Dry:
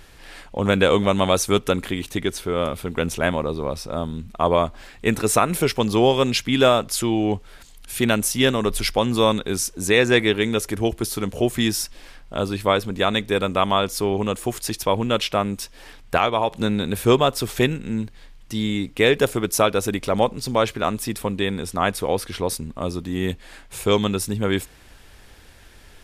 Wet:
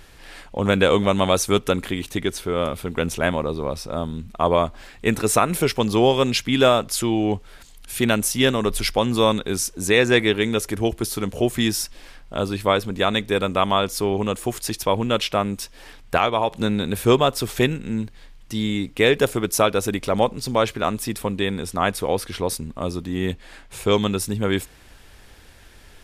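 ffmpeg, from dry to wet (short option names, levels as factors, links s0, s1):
-filter_complex "[0:a]asettb=1/sr,asplit=3[s0][s1][s2];[s0]atrim=end=23.064[s3];[s1]atrim=start=23.06:end=23.94,asetpts=PTS-STARTPTS,afade=t=in:d=0.004:c=qsin,afade=t=out:st=0.876:d=0.004:c=qsin,highshelf=f=8500:g=-6[s4];[s2]atrim=start=23.936[s5];[s3][s4]acrossfade=d=0.004:c1=hsin:c2=qsin[s6];[s6][s5]acrossfade=d=0.004:c1=qsin:c2=hsin"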